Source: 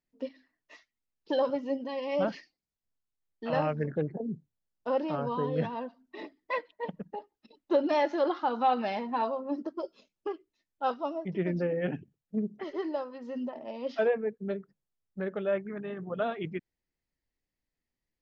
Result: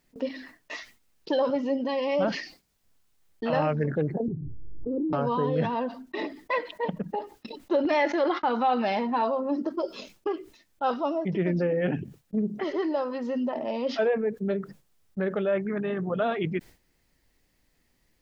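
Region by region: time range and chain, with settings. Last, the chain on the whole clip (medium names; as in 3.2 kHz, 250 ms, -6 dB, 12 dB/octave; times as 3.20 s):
4.28–5.13 s: inverse Chebyshev low-pass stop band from 800 Hz, stop band 50 dB + comb 2.4 ms, depth 93% + swell ahead of each attack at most 25 dB/s
7.85–8.63 s: gate -42 dBFS, range -30 dB + peaking EQ 2.1 kHz +8.5 dB 0.48 oct
whole clip: gate with hold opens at -55 dBFS; level flattener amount 50%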